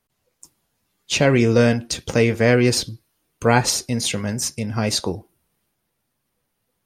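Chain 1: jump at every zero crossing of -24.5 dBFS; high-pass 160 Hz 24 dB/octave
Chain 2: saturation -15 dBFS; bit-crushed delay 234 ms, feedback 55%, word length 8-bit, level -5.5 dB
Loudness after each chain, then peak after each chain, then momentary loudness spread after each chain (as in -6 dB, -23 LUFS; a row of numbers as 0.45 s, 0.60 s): -20.5 LUFS, -22.0 LUFS; -2.5 dBFS, -10.5 dBFS; 13 LU, 11 LU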